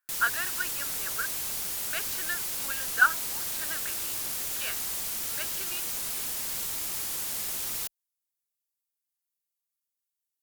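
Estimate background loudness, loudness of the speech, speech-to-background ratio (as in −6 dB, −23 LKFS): −30.0 LKFS, −32.5 LKFS, −2.5 dB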